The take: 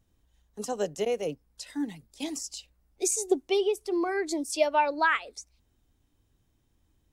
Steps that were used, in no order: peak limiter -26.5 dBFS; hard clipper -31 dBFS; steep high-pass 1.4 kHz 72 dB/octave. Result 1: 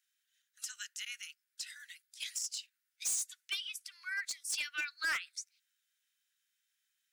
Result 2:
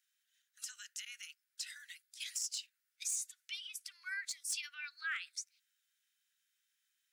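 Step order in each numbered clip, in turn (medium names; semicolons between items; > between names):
steep high-pass > hard clipper > peak limiter; peak limiter > steep high-pass > hard clipper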